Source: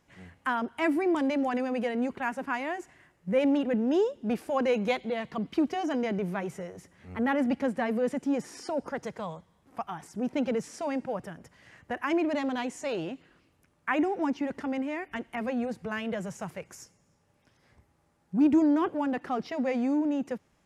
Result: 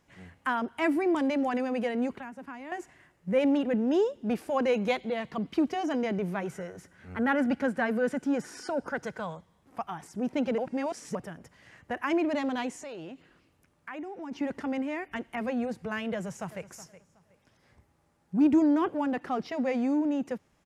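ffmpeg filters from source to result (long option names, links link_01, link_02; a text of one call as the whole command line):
ffmpeg -i in.wav -filter_complex "[0:a]asettb=1/sr,asplit=3[link_01][link_02][link_03];[link_01]atrim=end=2.164[link_04];[link_02]atrim=start=2.16:end=2.72,asetpts=PTS-STARTPTS,afade=type=in:duration=0.004:curve=qsin,afade=type=out:start_time=0.556:duration=0.004:curve=qsin,acrossover=split=260|620[link_05][link_06][link_07];[link_05]acompressor=threshold=-47dB:ratio=4[link_08];[link_06]acompressor=threshold=-51dB:ratio=4[link_09];[link_07]acompressor=threshold=-45dB:ratio=4[link_10];[link_08][link_09][link_10]amix=inputs=3:normalize=0[link_11];[link_03]atrim=start=2.716[link_12];[link_04][link_11]acrossfade=duration=0.004:curve1=hsin:curve2=qsin[link_13];[link_13][link_12]acrossfade=duration=0.004:curve1=qsin:curve2=hsin,asettb=1/sr,asplit=3[link_14][link_15][link_16];[link_14]atrim=end=6.454[link_17];[link_15]atrim=start=6.45:end=9.35,asetpts=PTS-STARTPTS,afade=type=in:duration=0.004:curve=qsin,afade=type=out:start_time=2.896:duration=0.004:curve=qsin,equalizer=frequency=1500:width=7.6:gain=13.5[link_18];[link_16]atrim=start=9.346[link_19];[link_17][link_18]acrossfade=duration=0.004:curve1=hsin:curve2=qsin[link_20];[link_20][link_19]acrossfade=duration=0.004:curve1=qsin:curve2=hsin,asplit=3[link_21][link_22][link_23];[link_21]afade=type=out:start_time=12.75:duration=0.02[link_24];[link_22]acompressor=threshold=-42dB:ratio=2.5:attack=3.2:release=140:knee=1:detection=peak,afade=type=in:start_time=12.75:duration=0.02,afade=type=out:start_time=14.31:duration=0.02[link_25];[link_23]afade=type=in:start_time=14.31:duration=0.02[link_26];[link_24][link_25][link_26]amix=inputs=3:normalize=0,asplit=2[link_27][link_28];[link_28]afade=type=in:start_time=16.14:duration=0.01,afade=type=out:start_time=16.65:duration=0.01,aecho=0:1:370|740|1110:0.16788|0.0419701|0.0104925[link_29];[link_27][link_29]amix=inputs=2:normalize=0,asplit=3[link_30][link_31][link_32];[link_30]atrim=end=10.582[link_33];[link_31]atrim=start=10.578:end=11.152,asetpts=PTS-STARTPTS,areverse[link_34];[link_32]atrim=start=11.148[link_35];[link_33][link_34]acrossfade=duration=0.004:curve1=hsin:curve2=hsin[link_36];[link_36][link_35]acrossfade=duration=0.004:curve1=hsin:curve2=hsin" out.wav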